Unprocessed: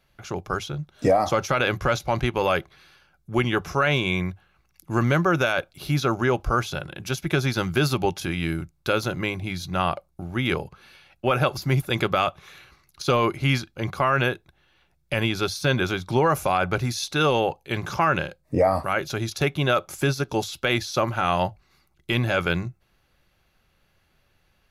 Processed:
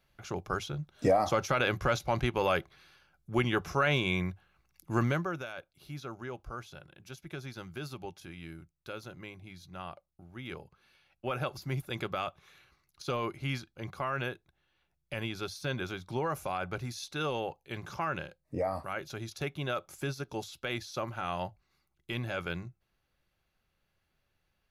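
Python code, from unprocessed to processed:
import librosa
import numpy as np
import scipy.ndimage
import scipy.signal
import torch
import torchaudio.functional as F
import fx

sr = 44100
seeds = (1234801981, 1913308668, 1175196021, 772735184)

y = fx.gain(x, sr, db=fx.line((5.02, -6.0), (5.45, -19.0), (10.32, -19.0), (11.28, -12.5)))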